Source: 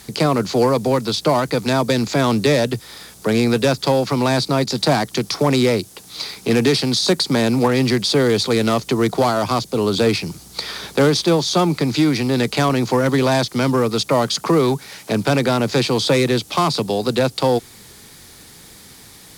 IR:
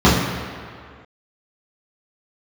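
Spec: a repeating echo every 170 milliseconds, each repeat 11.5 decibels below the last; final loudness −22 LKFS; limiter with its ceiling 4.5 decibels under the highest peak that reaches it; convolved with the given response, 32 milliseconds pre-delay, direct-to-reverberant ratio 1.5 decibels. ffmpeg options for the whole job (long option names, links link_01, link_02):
-filter_complex "[0:a]alimiter=limit=-9dB:level=0:latency=1,aecho=1:1:170|340|510:0.266|0.0718|0.0194,asplit=2[link_01][link_02];[1:a]atrim=start_sample=2205,adelay=32[link_03];[link_02][link_03]afir=irnorm=-1:irlink=0,volume=-28.5dB[link_04];[link_01][link_04]amix=inputs=2:normalize=0,volume=-10dB"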